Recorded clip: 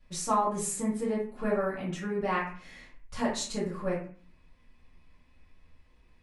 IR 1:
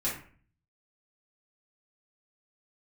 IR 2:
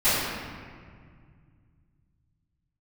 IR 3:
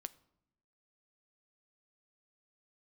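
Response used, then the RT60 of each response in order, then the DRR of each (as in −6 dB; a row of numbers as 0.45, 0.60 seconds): 1; 0.45 s, 2.0 s, non-exponential decay; −9.0, −20.0, 13.5 decibels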